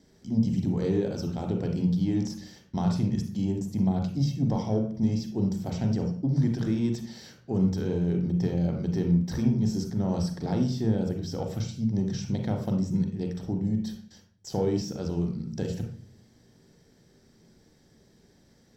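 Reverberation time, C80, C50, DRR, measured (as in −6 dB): 0.45 s, 10.0 dB, 6.0 dB, 3.0 dB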